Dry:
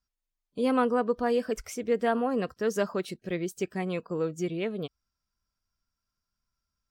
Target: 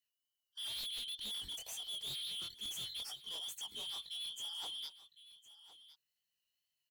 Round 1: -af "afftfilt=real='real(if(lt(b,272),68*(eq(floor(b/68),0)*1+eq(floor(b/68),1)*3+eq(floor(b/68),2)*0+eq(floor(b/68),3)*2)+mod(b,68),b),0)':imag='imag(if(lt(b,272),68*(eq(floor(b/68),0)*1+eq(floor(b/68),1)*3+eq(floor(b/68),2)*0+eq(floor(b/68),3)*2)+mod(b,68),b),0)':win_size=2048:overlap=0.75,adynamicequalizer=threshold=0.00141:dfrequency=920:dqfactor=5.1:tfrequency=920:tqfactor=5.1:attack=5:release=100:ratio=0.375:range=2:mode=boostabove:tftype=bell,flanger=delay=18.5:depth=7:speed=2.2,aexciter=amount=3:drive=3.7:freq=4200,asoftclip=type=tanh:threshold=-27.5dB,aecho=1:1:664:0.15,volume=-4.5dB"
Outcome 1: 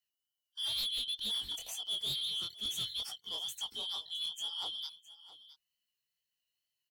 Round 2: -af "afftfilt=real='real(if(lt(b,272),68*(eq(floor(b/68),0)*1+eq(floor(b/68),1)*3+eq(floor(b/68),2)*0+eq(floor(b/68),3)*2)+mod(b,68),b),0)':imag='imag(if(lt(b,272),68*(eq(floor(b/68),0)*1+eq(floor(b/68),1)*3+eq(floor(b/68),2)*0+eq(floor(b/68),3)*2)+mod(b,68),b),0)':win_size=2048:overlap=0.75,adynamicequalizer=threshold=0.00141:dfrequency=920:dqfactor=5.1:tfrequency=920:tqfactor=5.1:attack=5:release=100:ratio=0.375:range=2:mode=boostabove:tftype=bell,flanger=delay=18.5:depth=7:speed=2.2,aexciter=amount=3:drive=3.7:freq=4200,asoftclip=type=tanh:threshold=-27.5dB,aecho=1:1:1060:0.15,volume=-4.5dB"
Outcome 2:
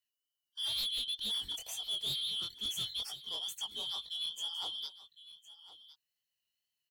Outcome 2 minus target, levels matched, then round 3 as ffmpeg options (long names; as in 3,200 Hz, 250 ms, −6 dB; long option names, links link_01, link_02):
soft clipping: distortion −5 dB
-af "afftfilt=real='real(if(lt(b,272),68*(eq(floor(b/68),0)*1+eq(floor(b/68),1)*3+eq(floor(b/68),2)*0+eq(floor(b/68),3)*2)+mod(b,68),b),0)':imag='imag(if(lt(b,272),68*(eq(floor(b/68),0)*1+eq(floor(b/68),1)*3+eq(floor(b/68),2)*0+eq(floor(b/68),3)*2)+mod(b,68),b),0)':win_size=2048:overlap=0.75,adynamicequalizer=threshold=0.00141:dfrequency=920:dqfactor=5.1:tfrequency=920:tqfactor=5.1:attack=5:release=100:ratio=0.375:range=2:mode=boostabove:tftype=bell,flanger=delay=18.5:depth=7:speed=2.2,aexciter=amount=3:drive=3.7:freq=4200,asoftclip=type=tanh:threshold=-36.5dB,aecho=1:1:1060:0.15,volume=-4.5dB"